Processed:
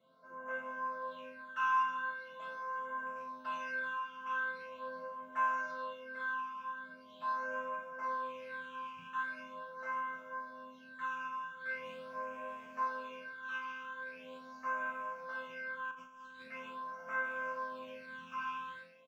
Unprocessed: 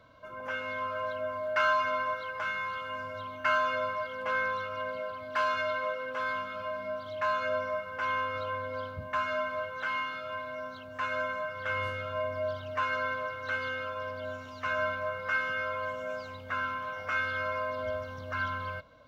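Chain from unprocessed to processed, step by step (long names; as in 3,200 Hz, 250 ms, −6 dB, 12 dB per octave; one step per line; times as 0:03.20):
loose part that buzzes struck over −45 dBFS, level −34 dBFS
high-pass filter 140 Hz 24 dB per octave
resonators tuned to a chord F3 major, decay 0.81 s
0:15.91–0:16.48: compressor whose output falls as the input rises −60 dBFS, ratio −0.5
all-pass phaser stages 8, 0.42 Hz, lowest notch 550–4,300 Hz
ambience of single reflections 36 ms −9 dB, 79 ms −17 dB
level +13.5 dB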